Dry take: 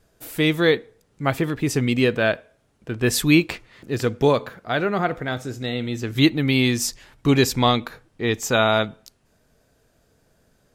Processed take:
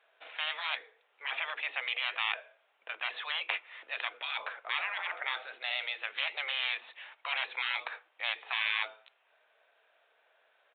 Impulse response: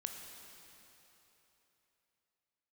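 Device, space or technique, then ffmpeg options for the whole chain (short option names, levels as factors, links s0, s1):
musical greeting card: -af "highpass=150,deesser=0.65,afftfilt=real='re*lt(hypot(re,im),0.1)':imag='im*lt(hypot(re,im),0.1)':win_size=1024:overlap=0.75,aresample=8000,aresample=44100,highpass=f=650:w=0.5412,highpass=f=650:w=1.3066,equalizer=f=2400:t=o:w=0.59:g=5"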